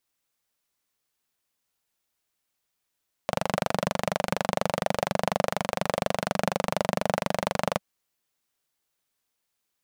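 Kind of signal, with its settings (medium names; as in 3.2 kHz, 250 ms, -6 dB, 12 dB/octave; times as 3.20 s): single-cylinder engine model, steady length 4.51 s, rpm 2900, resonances 190/580 Hz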